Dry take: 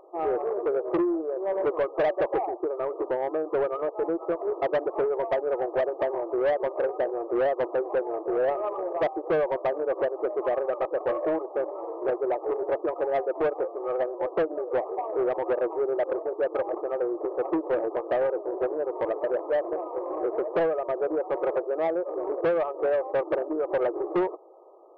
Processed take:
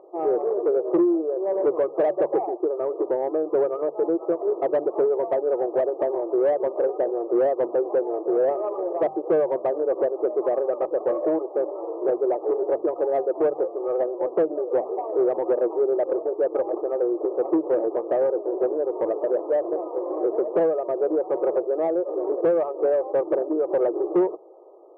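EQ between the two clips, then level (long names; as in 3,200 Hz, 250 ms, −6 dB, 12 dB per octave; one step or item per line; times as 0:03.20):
resonant band-pass 350 Hz, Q 0.83
mains-hum notches 50/100/150/200/250 Hz
+5.5 dB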